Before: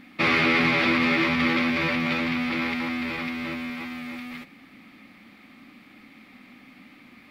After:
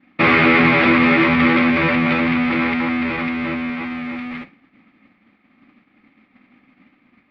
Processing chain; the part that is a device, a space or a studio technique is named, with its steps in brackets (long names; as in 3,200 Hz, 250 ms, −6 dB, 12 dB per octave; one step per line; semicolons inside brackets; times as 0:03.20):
hearing-loss simulation (low-pass filter 2,400 Hz 12 dB per octave; downward expander −40 dBFS)
level +9 dB